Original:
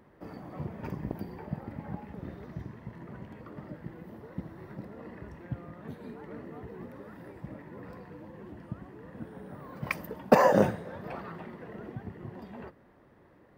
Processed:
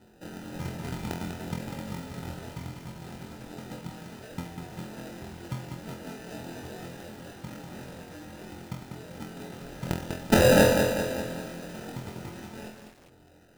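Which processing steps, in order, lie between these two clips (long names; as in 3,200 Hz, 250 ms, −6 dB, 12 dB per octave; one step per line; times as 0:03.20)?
low-pass filter 8,100 Hz 24 dB per octave
decimation without filtering 40×
flutter between parallel walls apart 4 metres, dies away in 0.38 s
feedback echo at a low word length 196 ms, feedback 55%, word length 8 bits, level −5.5 dB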